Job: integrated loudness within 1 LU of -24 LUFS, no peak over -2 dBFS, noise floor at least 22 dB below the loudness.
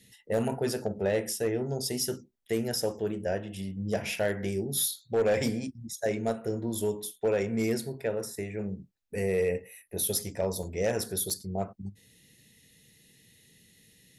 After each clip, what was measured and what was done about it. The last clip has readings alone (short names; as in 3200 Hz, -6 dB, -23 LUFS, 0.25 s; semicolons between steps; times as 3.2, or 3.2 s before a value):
clipped 0.5%; flat tops at -20.0 dBFS; dropouts 2; longest dropout 3.3 ms; loudness -31.0 LUFS; peak -20.0 dBFS; loudness target -24.0 LUFS
-> clip repair -20 dBFS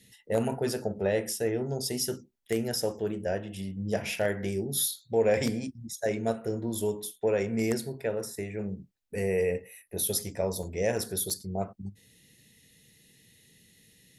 clipped 0.0%; dropouts 2; longest dropout 3.3 ms
-> interpolate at 10.63/11.3, 3.3 ms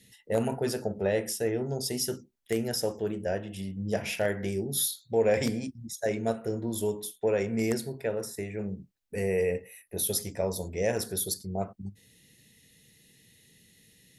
dropouts 0; loudness -30.5 LUFS; peak -11.0 dBFS; loudness target -24.0 LUFS
-> gain +6.5 dB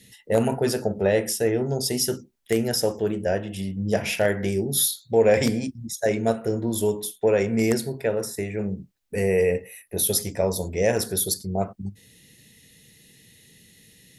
loudness -24.0 LUFS; peak -4.5 dBFS; noise floor -57 dBFS